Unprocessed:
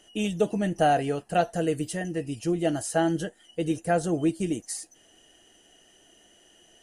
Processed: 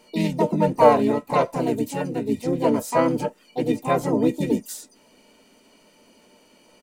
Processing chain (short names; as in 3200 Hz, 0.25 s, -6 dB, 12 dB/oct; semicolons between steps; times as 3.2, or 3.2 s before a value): small resonant body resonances 260/590/1300/2400 Hz, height 17 dB, ringing for 70 ms; harmoniser -4 st -1 dB, +7 st -2 dB; gain -5 dB